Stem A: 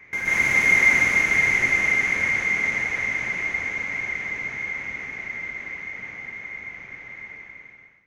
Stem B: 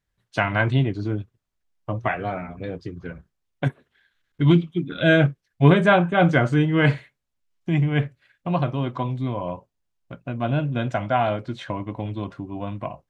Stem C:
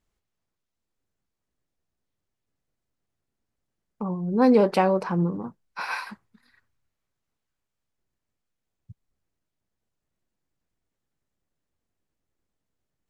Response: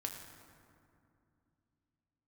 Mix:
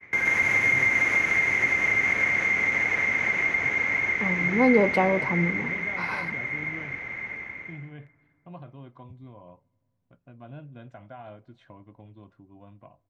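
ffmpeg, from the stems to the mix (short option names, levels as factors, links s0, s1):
-filter_complex "[0:a]highpass=57,acrossover=split=120|260[s0][s1][s2];[s0]acompressor=threshold=0.00158:ratio=4[s3];[s1]acompressor=threshold=0.002:ratio=4[s4];[s2]acompressor=threshold=0.0562:ratio=4[s5];[s3][s4][s5]amix=inputs=3:normalize=0,agate=range=0.0224:threshold=0.00631:ratio=3:detection=peak,volume=1.33,asplit=2[s6][s7];[s7]volume=0.668[s8];[1:a]alimiter=limit=0.224:level=0:latency=1,volume=0.1,asplit=2[s9][s10];[s10]volume=0.0668[s11];[2:a]adelay=200,volume=0.708,asplit=2[s12][s13];[s13]volume=0.224[s14];[3:a]atrim=start_sample=2205[s15];[s8][s11][s14]amix=inputs=3:normalize=0[s16];[s16][s15]afir=irnorm=-1:irlink=0[s17];[s6][s9][s12][s17]amix=inputs=4:normalize=0,highshelf=f=3800:g=-9.5"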